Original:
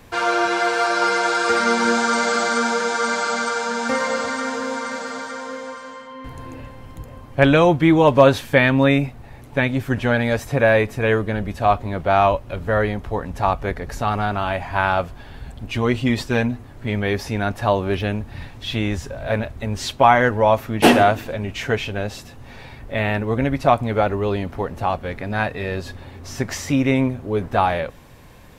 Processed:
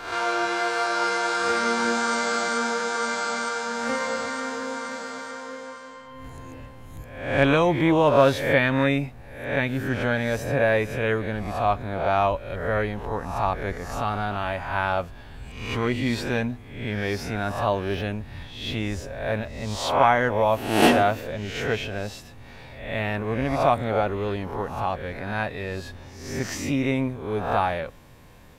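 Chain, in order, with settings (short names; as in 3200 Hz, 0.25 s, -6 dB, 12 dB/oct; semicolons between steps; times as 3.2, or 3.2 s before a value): spectral swells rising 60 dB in 0.69 s; gain -6.5 dB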